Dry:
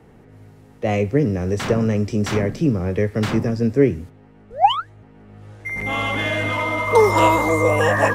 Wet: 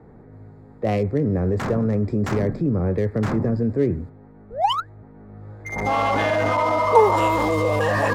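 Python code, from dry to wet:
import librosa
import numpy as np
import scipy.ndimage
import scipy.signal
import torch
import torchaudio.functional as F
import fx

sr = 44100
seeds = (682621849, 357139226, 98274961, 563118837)

p1 = fx.wiener(x, sr, points=15)
p2 = fx.peak_eq(p1, sr, hz=800.0, db=11.0, octaves=1.5, at=(5.72, 7.16))
p3 = fx.over_compress(p2, sr, threshold_db=-22.0, ratio=-1.0)
p4 = p2 + (p3 * librosa.db_to_amplitude(0.5))
y = p4 * librosa.db_to_amplitude(-7.0)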